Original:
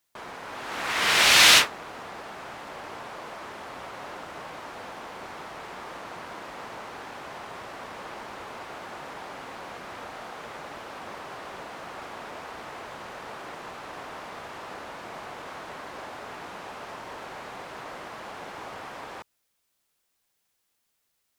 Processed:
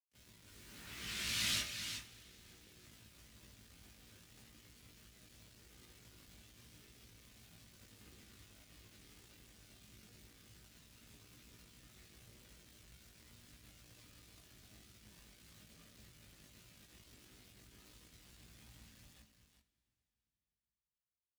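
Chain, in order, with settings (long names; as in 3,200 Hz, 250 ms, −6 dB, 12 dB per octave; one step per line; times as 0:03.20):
thirty-one-band graphic EQ 200 Hz +6 dB, 500 Hz −10 dB, 800 Hz −7 dB
bit-depth reduction 6 bits, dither none
pitch-shifted copies added −7 semitones −10 dB, +12 semitones −16 dB
high-pass filter 61 Hz
on a send: single-tap delay 377 ms −8 dB
on the sum: multi-voice chorus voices 4, 0.15 Hz, delay 18 ms, depth 1.6 ms
guitar amp tone stack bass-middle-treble 10-0-1
coupled-rooms reverb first 0.28 s, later 4 s, from −20 dB, DRR 10 dB
level +4 dB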